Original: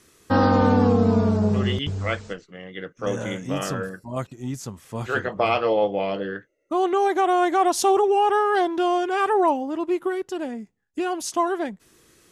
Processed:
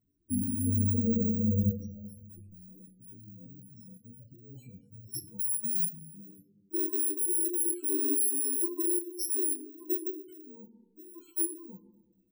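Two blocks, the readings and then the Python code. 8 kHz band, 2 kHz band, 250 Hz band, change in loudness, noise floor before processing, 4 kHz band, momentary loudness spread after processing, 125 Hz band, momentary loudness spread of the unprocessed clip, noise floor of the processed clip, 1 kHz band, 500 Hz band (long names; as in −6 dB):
+5.5 dB, below −40 dB, −9.5 dB, −6.0 dB, −63 dBFS, −19.5 dB, 18 LU, −8.0 dB, 14 LU, −68 dBFS, below −40 dB, −19.0 dB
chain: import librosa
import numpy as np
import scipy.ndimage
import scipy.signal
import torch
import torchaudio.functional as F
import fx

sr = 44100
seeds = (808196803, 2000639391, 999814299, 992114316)

y = fx.bit_reversed(x, sr, seeds[0], block=64)
y = fx.level_steps(y, sr, step_db=22)
y = fx.spec_topn(y, sr, count=8)
y = fx.rev_freeverb(y, sr, rt60_s=1.1, hf_ratio=0.25, predelay_ms=0, drr_db=9.0)
y = fx.detune_double(y, sr, cents=21)
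y = F.gain(torch.from_numpy(y), 2.0).numpy()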